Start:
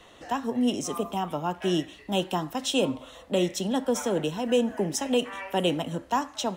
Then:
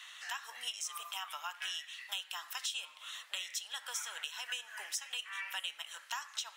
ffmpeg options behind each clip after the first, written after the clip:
-af "highpass=f=1400:w=0.5412,highpass=f=1400:w=1.3066,acompressor=threshold=0.00708:ratio=5,volume=1.88"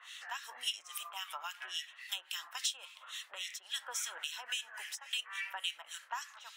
-filter_complex "[0:a]acrossover=split=1600[s0][s1];[s0]aeval=exprs='val(0)*(1-1/2+1/2*cos(2*PI*3.6*n/s))':c=same[s2];[s1]aeval=exprs='val(0)*(1-1/2-1/2*cos(2*PI*3.6*n/s))':c=same[s3];[s2][s3]amix=inputs=2:normalize=0,volume=1.78"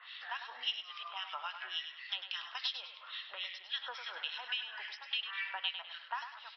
-filter_complex "[0:a]asplit=2[s0][s1];[s1]aecho=0:1:101|202|303|404:0.355|0.124|0.0435|0.0152[s2];[s0][s2]amix=inputs=2:normalize=0,aresample=11025,aresample=44100,volume=1.12"

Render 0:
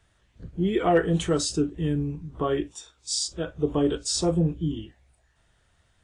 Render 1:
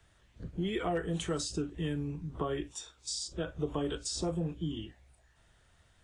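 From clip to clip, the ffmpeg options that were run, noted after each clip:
-filter_complex "[0:a]acrossover=split=150|670|7200[s0][s1][s2][s3];[s0]acompressor=threshold=0.00794:ratio=4[s4];[s1]acompressor=threshold=0.0158:ratio=4[s5];[s2]acompressor=threshold=0.0112:ratio=4[s6];[s3]acompressor=threshold=0.00447:ratio=4[s7];[s4][s5][s6][s7]amix=inputs=4:normalize=0"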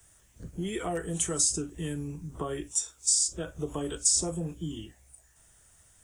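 -af "aexciter=amount=7.8:drive=5.2:freq=5900"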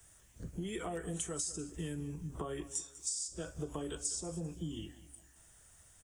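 -af "acompressor=threshold=0.0178:ratio=5,aecho=1:1:197|394|591:0.141|0.048|0.0163,volume=0.841"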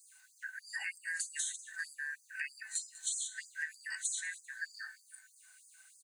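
-af "afftfilt=real='real(if(lt(b,272),68*(eq(floor(b/68),0)*1+eq(floor(b/68),1)*0+eq(floor(b/68),2)*3+eq(floor(b/68),3)*2)+mod(b,68),b),0)':imag='imag(if(lt(b,272),68*(eq(floor(b/68),0)*1+eq(floor(b/68),1)*0+eq(floor(b/68),2)*3+eq(floor(b/68),3)*2)+mod(b,68),b),0)':win_size=2048:overlap=0.75,bandreject=f=76.31:t=h:w=4,bandreject=f=152.62:t=h:w=4,bandreject=f=228.93:t=h:w=4,bandreject=f=305.24:t=h:w=4,bandreject=f=381.55:t=h:w=4,bandreject=f=457.86:t=h:w=4,bandreject=f=534.17:t=h:w=4,bandreject=f=610.48:t=h:w=4,bandreject=f=686.79:t=h:w=4,bandreject=f=763.1:t=h:w=4,bandreject=f=839.41:t=h:w=4,afftfilt=real='re*gte(b*sr/1024,620*pow(4700/620,0.5+0.5*sin(2*PI*3.2*pts/sr)))':imag='im*gte(b*sr/1024,620*pow(4700/620,0.5+0.5*sin(2*PI*3.2*pts/sr)))':win_size=1024:overlap=0.75,volume=1.12"

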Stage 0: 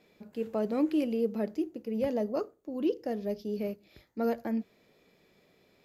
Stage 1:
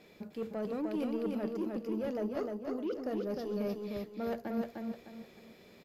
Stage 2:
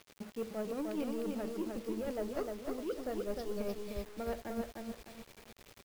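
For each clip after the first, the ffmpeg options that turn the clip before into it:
-af "areverse,acompressor=threshold=0.0141:ratio=6,areverse,asoftclip=type=tanh:threshold=0.0178,aecho=1:1:304|608|912|1216:0.668|0.227|0.0773|0.0263,volume=1.88"
-af "asubboost=boost=11.5:cutoff=57,tremolo=f=10:d=0.46,acrusher=bits=8:mix=0:aa=0.000001,volume=1.12"

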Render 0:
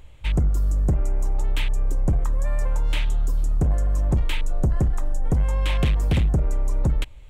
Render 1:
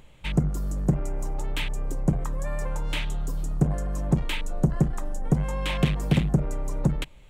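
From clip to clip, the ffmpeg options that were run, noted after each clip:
-af "lowshelf=f=120:t=q:w=3:g=-7"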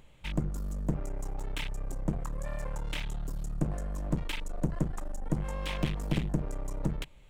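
-af "aeval=exprs='clip(val(0),-1,0.0316)':c=same,volume=0.562"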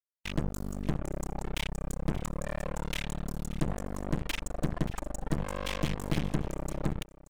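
-af "acrusher=bits=4:mix=0:aa=0.5,aecho=1:1:580:0.119"

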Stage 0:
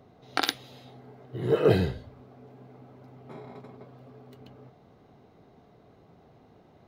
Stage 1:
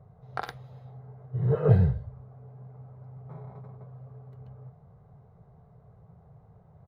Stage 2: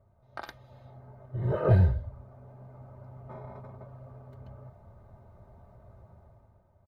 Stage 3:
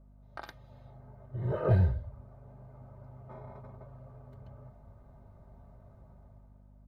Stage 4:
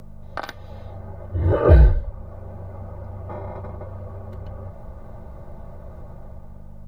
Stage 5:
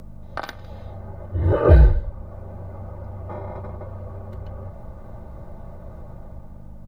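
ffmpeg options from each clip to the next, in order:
-af "firequalizer=gain_entry='entry(150,0);entry(280,-29);entry(440,-12);entry(1100,-11);entry(2800,-28)':delay=0.05:min_phase=1,volume=2.51"
-af "aecho=1:1:3.3:0.79,dynaudnorm=f=110:g=13:m=3.98,volume=0.376"
-af "aeval=exprs='val(0)+0.00251*(sin(2*PI*50*n/s)+sin(2*PI*2*50*n/s)/2+sin(2*PI*3*50*n/s)/3+sin(2*PI*4*50*n/s)/4+sin(2*PI*5*50*n/s)/5)':c=same,volume=0.668"
-filter_complex "[0:a]asplit=2[s0][s1];[s1]acompressor=mode=upward:threshold=0.0126:ratio=2.5,volume=0.944[s2];[s0][s2]amix=inputs=2:normalize=0,afreqshift=-34,volume=2.37"
-af "aeval=exprs='val(0)+0.00447*(sin(2*PI*60*n/s)+sin(2*PI*2*60*n/s)/2+sin(2*PI*3*60*n/s)/3+sin(2*PI*4*60*n/s)/4+sin(2*PI*5*60*n/s)/5)':c=same,aecho=1:1:157:0.0794"

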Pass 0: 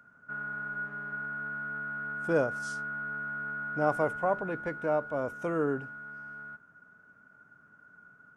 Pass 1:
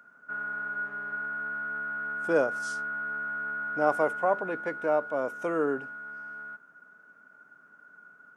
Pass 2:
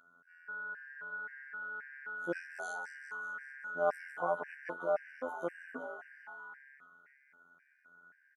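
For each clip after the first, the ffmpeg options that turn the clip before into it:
-af "highpass=280,volume=1.41"
-filter_complex "[0:a]afftfilt=real='hypot(re,im)*cos(PI*b)':imag='0':win_size=2048:overlap=0.75,asplit=8[s0][s1][s2][s3][s4][s5][s6][s7];[s1]adelay=196,afreqshift=140,volume=0.251[s8];[s2]adelay=392,afreqshift=280,volume=0.158[s9];[s3]adelay=588,afreqshift=420,volume=0.1[s10];[s4]adelay=784,afreqshift=560,volume=0.0631[s11];[s5]adelay=980,afreqshift=700,volume=0.0394[s12];[s6]adelay=1176,afreqshift=840,volume=0.0248[s13];[s7]adelay=1372,afreqshift=980,volume=0.0157[s14];[s0][s8][s9][s10][s11][s12][s13][s14]amix=inputs=8:normalize=0,afftfilt=real='re*gt(sin(2*PI*1.9*pts/sr)*(1-2*mod(floor(b*sr/1024/1500),2)),0)':imag='im*gt(sin(2*PI*1.9*pts/sr)*(1-2*mod(floor(b*sr/1024/1500),2)),0)':win_size=1024:overlap=0.75,volume=0.668"

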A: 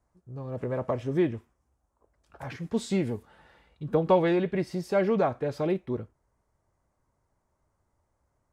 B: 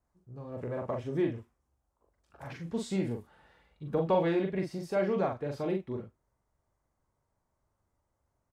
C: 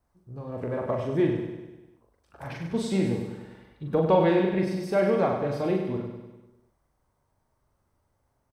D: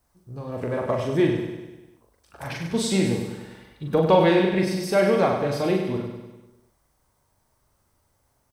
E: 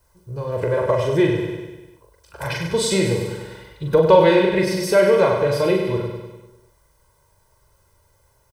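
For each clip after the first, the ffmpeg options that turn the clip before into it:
-filter_complex "[0:a]asplit=2[s0][s1];[s1]adelay=42,volume=0.631[s2];[s0][s2]amix=inputs=2:normalize=0,volume=0.501"
-filter_complex "[0:a]bandreject=f=7000:w=7.6,asplit=2[s0][s1];[s1]aecho=0:1:99|198|297|396|495|594|693:0.447|0.25|0.14|0.0784|0.0439|0.0246|0.0138[s2];[s0][s2]amix=inputs=2:normalize=0,volume=1.88"
-af "highshelf=f=2600:g=10.5,volume=1.41"
-filter_complex "[0:a]aecho=1:1:2:0.77,asplit=2[s0][s1];[s1]acompressor=threshold=0.0631:ratio=6,volume=0.794[s2];[s0][s2]amix=inputs=2:normalize=0"

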